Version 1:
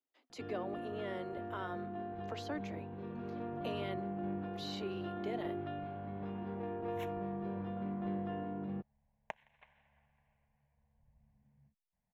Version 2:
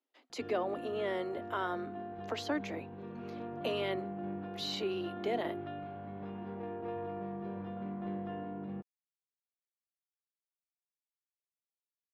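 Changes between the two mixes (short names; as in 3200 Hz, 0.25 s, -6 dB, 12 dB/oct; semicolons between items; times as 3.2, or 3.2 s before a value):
speech +7.5 dB; second sound: muted; master: add low shelf 87 Hz -7 dB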